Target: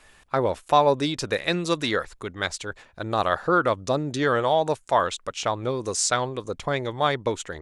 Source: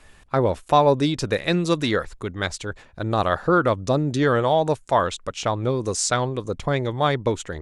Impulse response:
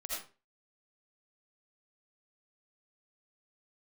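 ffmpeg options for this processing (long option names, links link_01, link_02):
-af "lowshelf=frequency=330:gain=-8.5"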